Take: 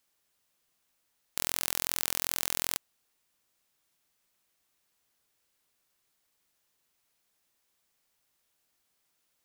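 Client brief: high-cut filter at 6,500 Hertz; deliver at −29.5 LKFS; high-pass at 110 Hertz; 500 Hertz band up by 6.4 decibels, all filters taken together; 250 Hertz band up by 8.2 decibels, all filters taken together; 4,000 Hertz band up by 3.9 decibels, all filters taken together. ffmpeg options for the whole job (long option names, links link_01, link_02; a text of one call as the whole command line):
ffmpeg -i in.wav -af "highpass=110,lowpass=6500,equalizer=frequency=250:width_type=o:gain=9,equalizer=frequency=500:width_type=o:gain=5.5,equalizer=frequency=4000:width_type=o:gain=5.5,volume=3.5dB" out.wav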